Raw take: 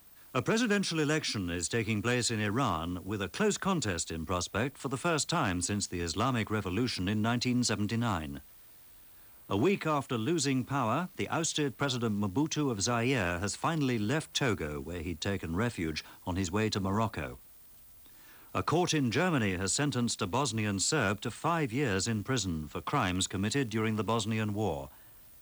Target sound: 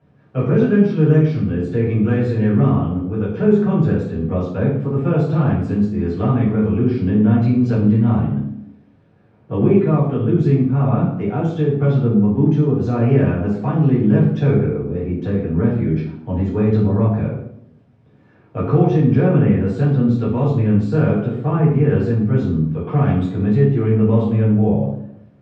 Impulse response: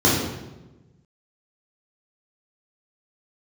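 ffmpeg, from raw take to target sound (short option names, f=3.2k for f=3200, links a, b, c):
-filter_complex "[0:a]lowpass=3.2k,aemphasis=mode=reproduction:type=bsi[a];[1:a]atrim=start_sample=2205,asetrate=70560,aresample=44100[b];[a][b]afir=irnorm=-1:irlink=0,volume=-15dB"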